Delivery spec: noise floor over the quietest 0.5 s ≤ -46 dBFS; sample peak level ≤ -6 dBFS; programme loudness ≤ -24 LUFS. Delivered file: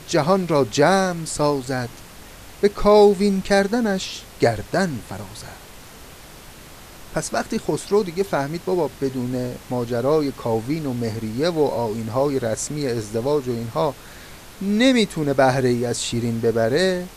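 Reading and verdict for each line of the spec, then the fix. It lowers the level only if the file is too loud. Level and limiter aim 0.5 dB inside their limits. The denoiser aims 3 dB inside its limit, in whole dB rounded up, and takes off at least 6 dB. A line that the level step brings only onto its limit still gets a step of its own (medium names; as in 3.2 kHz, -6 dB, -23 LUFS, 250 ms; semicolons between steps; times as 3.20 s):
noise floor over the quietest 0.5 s -42 dBFS: fail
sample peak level -4.0 dBFS: fail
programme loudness -21.0 LUFS: fail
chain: noise reduction 6 dB, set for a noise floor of -42 dBFS; trim -3.5 dB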